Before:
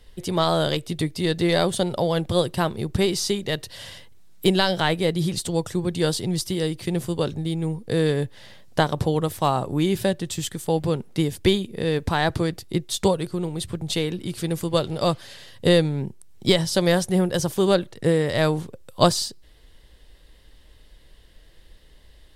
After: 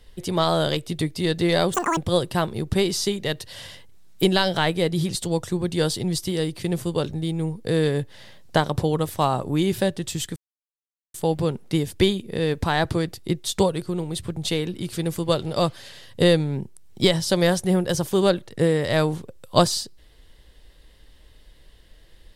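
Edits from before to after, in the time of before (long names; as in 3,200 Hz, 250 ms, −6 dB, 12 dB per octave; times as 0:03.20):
0:01.74–0:02.20: play speed 199%
0:10.59: splice in silence 0.78 s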